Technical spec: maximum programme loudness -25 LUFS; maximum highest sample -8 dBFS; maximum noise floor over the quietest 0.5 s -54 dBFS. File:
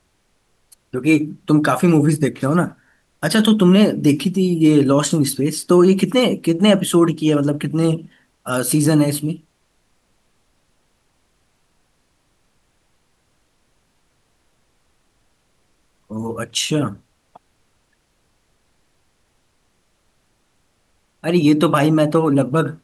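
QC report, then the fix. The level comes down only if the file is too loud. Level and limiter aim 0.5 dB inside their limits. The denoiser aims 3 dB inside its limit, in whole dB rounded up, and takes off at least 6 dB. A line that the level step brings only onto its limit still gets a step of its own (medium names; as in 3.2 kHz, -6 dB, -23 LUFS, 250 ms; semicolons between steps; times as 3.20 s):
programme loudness -17.0 LUFS: fail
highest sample -3.5 dBFS: fail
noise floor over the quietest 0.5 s -64 dBFS: pass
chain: trim -8.5 dB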